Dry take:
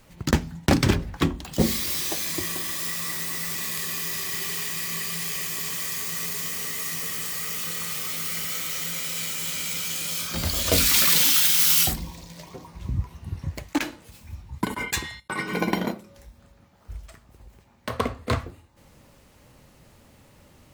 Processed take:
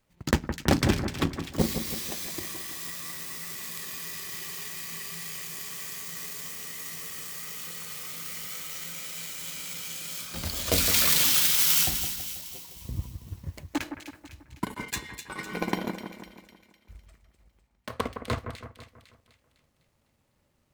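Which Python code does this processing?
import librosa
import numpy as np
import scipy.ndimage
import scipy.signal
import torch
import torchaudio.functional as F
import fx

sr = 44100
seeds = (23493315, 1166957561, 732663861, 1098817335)

y = fx.power_curve(x, sr, exponent=1.4)
y = fx.echo_split(y, sr, split_hz=2000.0, low_ms=163, high_ms=252, feedback_pct=52, wet_db=-8.5)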